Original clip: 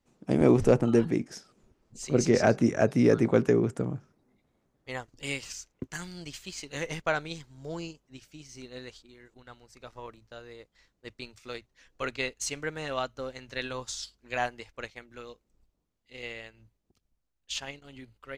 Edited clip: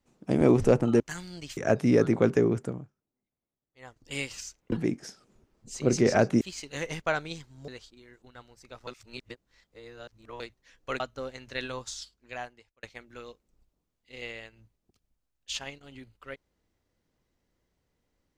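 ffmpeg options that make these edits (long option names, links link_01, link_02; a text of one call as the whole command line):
ffmpeg -i in.wav -filter_complex "[0:a]asplit=12[link_01][link_02][link_03][link_04][link_05][link_06][link_07][link_08][link_09][link_10][link_11][link_12];[link_01]atrim=end=1.002[link_13];[link_02]atrim=start=5.838:end=6.412[link_14];[link_03]atrim=start=2.688:end=4.04,asetpts=PTS-STARTPTS,afade=type=out:start_time=1.012:duration=0.34:silence=0.1[link_15];[link_04]atrim=start=4.04:end=4.9,asetpts=PTS-STARTPTS,volume=-20dB[link_16];[link_05]atrim=start=4.9:end=5.842,asetpts=PTS-STARTPTS,afade=type=in:duration=0.34:silence=0.1[link_17];[link_06]atrim=start=0.998:end=2.692[link_18];[link_07]atrim=start=6.408:end=7.682[link_19];[link_08]atrim=start=8.798:end=9.992[link_20];[link_09]atrim=start=9.988:end=11.522,asetpts=PTS-STARTPTS,areverse[link_21];[link_10]atrim=start=11.518:end=12.122[link_22];[link_11]atrim=start=13.008:end=14.84,asetpts=PTS-STARTPTS,afade=type=out:start_time=0.692:duration=1.14[link_23];[link_12]atrim=start=14.84,asetpts=PTS-STARTPTS,afade=type=in:duration=0.004:curve=hsin[link_24];[link_13][link_14]acrossfade=duration=0.004:curve1=hsin:curve2=hsin[link_25];[link_15][link_16][link_17]concat=n=3:v=0:a=1[link_26];[link_25][link_26]acrossfade=duration=0.004:curve1=hsin:curve2=hsin[link_27];[link_27][link_18]acrossfade=duration=0.004:curve1=hsin:curve2=hsin[link_28];[link_28][link_19]acrossfade=duration=0.004:curve1=hsin:curve2=hsin[link_29];[link_29][link_20]acrossfade=duration=0.004:curve1=hsin:curve2=hsin[link_30];[link_30][link_21]acrossfade=duration=0.004:curve1=hsin:curve2=hsin[link_31];[link_31][link_22]acrossfade=duration=0.004:curve1=hsin:curve2=hsin[link_32];[link_23][link_24]concat=n=2:v=0:a=1[link_33];[link_32][link_33]acrossfade=duration=0.004:curve1=hsin:curve2=hsin" out.wav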